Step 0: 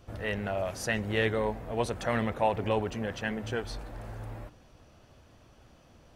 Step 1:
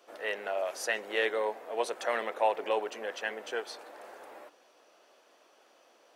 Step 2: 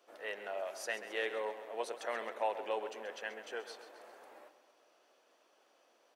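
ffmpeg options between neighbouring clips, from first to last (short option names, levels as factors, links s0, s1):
-af "highpass=f=390:w=0.5412,highpass=f=390:w=1.3066"
-af "aecho=1:1:133|266|399|532|665|798:0.251|0.136|0.0732|0.0396|0.0214|0.0115,volume=0.422"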